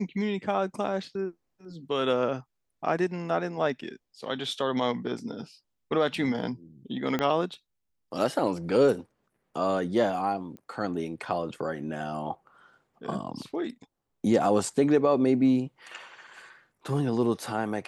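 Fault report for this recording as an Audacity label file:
7.190000	7.190000	click −14 dBFS
10.570000	10.570000	click −30 dBFS

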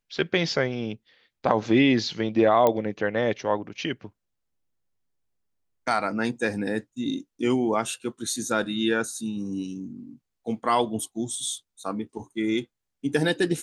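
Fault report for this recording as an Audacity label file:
2.670000	2.670000	click −9 dBFS

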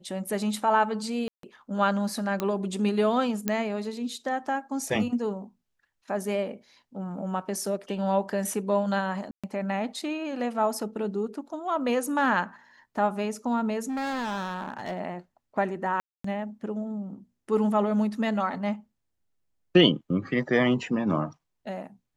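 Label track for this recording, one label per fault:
1.280000	1.430000	drop-out 153 ms
2.400000	2.400000	click −14 dBFS
3.480000	3.480000	click −11 dBFS
9.310000	9.440000	drop-out 126 ms
13.890000	14.990000	clipping −28 dBFS
16.000000	16.240000	drop-out 244 ms

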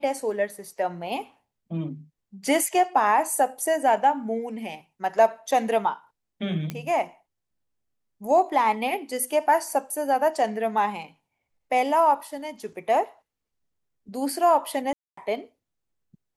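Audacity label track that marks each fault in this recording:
6.700000	6.700000	click −16 dBFS
14.930000	15.170000	drop-out 244 ms

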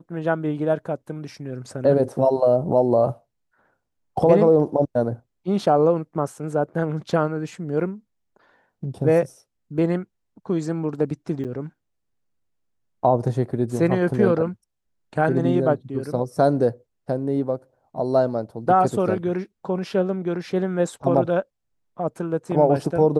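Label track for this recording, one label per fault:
11.440000	11.450000	drop-out 8 ms

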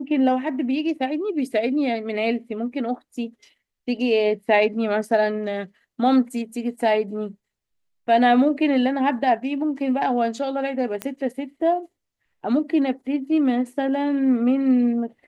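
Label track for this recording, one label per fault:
11.020000	11.020000	click −12 dBFS

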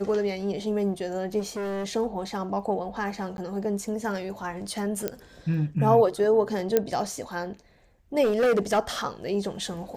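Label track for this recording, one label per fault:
1.390000	1.860000	clipping −28.5 dBFS
3.370000	3.380000	drop-out
5.080000	5.080000	click −13 dBFS
6.770000	6.770000	click −8 dBFS
8.230000	8.790000	clipping −18.5 dBFS

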